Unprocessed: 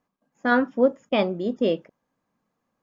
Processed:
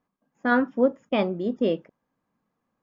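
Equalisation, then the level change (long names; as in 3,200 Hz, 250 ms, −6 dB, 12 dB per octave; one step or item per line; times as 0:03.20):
parametric band 600 Hz −2.5 dB
high-shelf EQ 3,700 Hz −9 dB
0.0 dB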